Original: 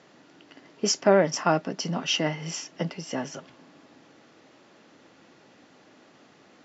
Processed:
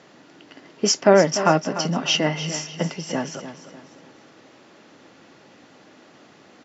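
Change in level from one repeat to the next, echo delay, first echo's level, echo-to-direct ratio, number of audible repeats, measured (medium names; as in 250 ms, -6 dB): -8.5 dB, 296 ms, -12.0 dB, -11.5 dB, 3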